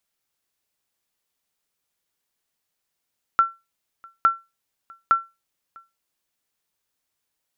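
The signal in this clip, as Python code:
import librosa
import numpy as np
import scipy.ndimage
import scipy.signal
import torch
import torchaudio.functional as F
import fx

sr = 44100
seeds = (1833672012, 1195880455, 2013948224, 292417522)

y = fx.sonar_ping(sr, hz=1350.0, decay_s=0.23, every_s=0.86, pings=3, echo_s=0.65, echo_db=-28.0, level_db=-8.5)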